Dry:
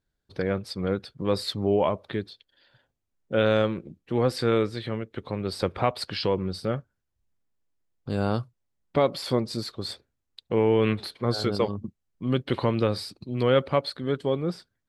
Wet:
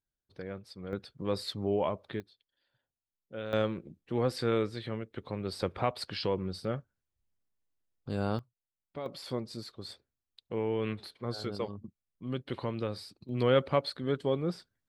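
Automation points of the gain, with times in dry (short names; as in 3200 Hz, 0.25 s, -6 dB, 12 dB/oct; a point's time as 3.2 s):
-14 dB
from 0.93 s -7 dB
from 2.2 s -17 dB
from 3.53 s -6 dB
from 8.39 s -18 dB
from 9.06 s -10.5 dB
from 13.29 s -4 dB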